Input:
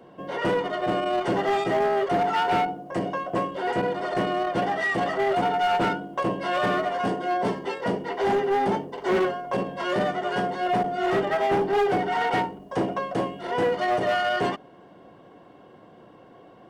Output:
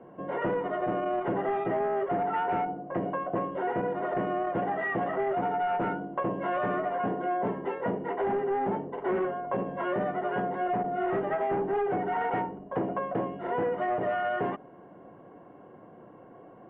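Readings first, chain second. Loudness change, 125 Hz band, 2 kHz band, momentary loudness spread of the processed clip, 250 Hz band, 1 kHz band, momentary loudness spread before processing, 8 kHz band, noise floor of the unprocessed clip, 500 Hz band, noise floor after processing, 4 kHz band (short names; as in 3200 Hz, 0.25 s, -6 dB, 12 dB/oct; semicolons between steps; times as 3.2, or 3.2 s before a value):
-5.0 dB, -4.5 dB, -7.5 dB, 4 LU, -4.0 dB, -5.0 dB, 6 LU, n/a, -50 dBFS, -4.5 dB, -51 dBFS, under -15 dB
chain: Bessel low-pass 1500 Hz, order 8; bell 64 Hz -5 dB 0.81 oct; compressor, threshold -26 dBFS, peak gain reduction 6.5 dB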